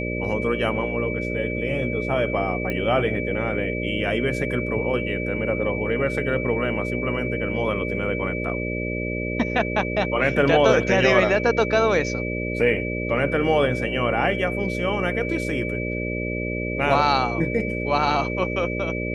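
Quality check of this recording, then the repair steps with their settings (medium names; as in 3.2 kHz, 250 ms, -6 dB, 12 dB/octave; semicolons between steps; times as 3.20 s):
buzz 60 Hz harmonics 10 -28 dBFS
whine 2.3 kHz -30 dBFS
2.70 s: pop -15 dBFS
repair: de-click; band-stop 2.3 kHz, Q 30; de-hum 60 Hz, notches 10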